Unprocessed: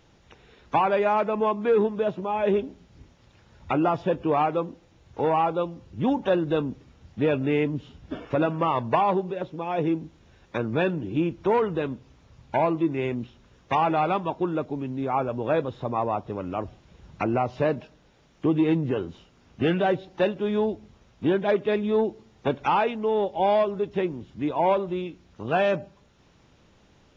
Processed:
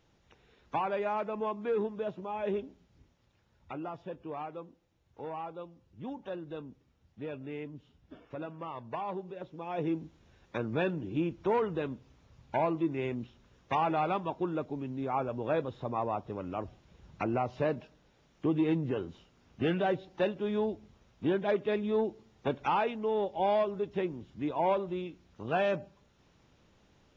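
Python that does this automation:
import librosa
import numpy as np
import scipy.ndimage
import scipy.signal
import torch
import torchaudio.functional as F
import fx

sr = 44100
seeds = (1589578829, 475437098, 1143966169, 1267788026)

y = fx.gain(x, sr, db=fx.line((2.56, -10.0), (3.85, -17.0), (8.79, -17.0), (9.97, -6.5)))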